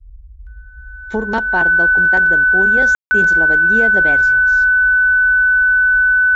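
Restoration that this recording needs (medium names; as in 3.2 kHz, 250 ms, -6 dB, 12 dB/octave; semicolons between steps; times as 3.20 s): band-stop 1.5 kHz, Q 30; room tone fill 2.95–3.11 s; noise print and reduce 26 dB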